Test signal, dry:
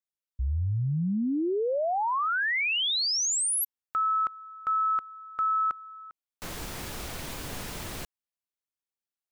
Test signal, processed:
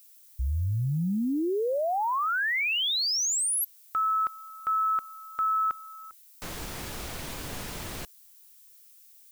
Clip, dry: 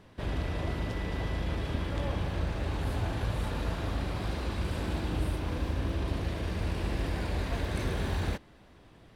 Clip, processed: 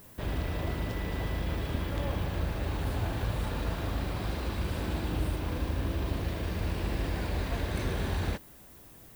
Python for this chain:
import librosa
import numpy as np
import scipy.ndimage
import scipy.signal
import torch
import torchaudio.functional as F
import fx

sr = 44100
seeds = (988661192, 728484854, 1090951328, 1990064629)

y = fx.dmg_noise_colour(x, sr, seeds[0], colour='violet', level_db=-55.0)